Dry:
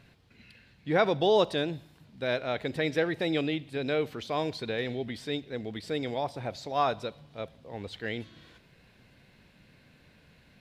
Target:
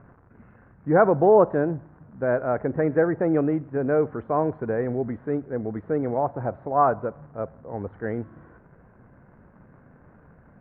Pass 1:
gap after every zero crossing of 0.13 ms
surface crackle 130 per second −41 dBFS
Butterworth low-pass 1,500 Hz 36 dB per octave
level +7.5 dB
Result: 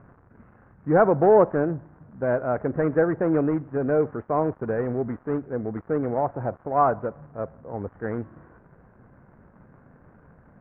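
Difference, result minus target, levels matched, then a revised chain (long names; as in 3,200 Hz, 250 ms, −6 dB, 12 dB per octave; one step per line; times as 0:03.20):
gap after every zero crossing: distortion +11 dB
gap after every zero crossing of 0.044 ms
surface crackle 130 per second −41 dBFS
Butterworth low-pass 1,500 Hz 36 dB per octave
level +7.5 dB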